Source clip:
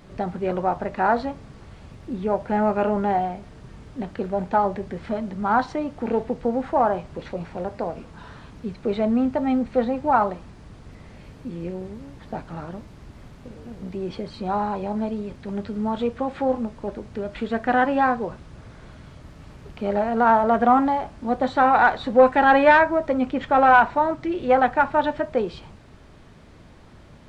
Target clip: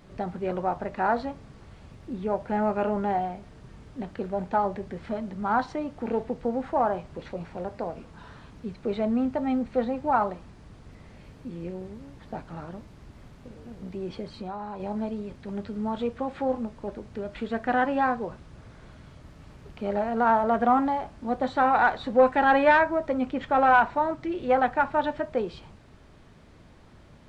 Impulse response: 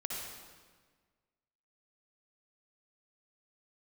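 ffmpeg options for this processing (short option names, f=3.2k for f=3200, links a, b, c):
-filter_complex "[0:a]asettb=1/sr,asplit=3[a][b][c];[a]atrim=end=14.284[d];[b]atrim=start=14.28:end=14.8,asetpts=PTS-STARTPTS,afade=t=in:d=0.004:c=qsin,afade=t=out:st=0.516:d=0.004:c=qsin,acompressor=threshold=-28dB:ratio=6[e];[c]atrim=start=14.796[f];[d][e]acrossfade=d=0.004:c1=hsin:c2=qsin[g];[g][f]acrossfade=d=0.004:c1=qsin:c2=hsin,volume=-4.5dB"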